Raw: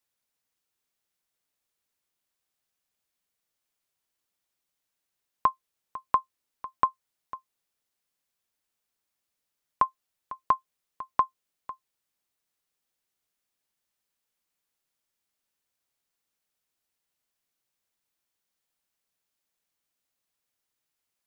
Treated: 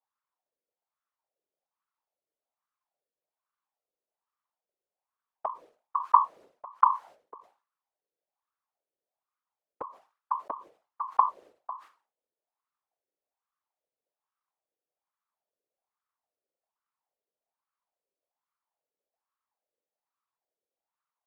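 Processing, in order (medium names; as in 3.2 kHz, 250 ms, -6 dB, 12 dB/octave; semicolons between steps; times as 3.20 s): compression, threshold -23 dBFS, peak gain reduction 6.5 dB; wah-wah 1.2 Hz 470–1200 Hz, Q 6.1; whisper effect; decay stretcher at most 150 dB/s; trim +9 dB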